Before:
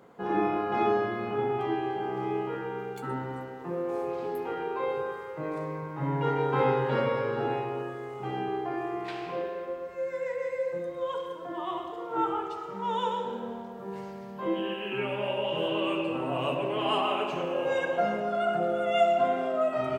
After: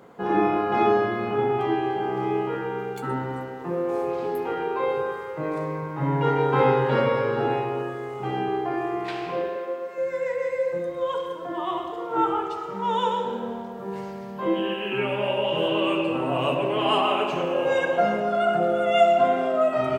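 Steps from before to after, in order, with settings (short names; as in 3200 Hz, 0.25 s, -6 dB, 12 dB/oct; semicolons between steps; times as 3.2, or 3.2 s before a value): 9.56–9.98 HPF 260 Hz 12 dB/oct; gain +5.5 dB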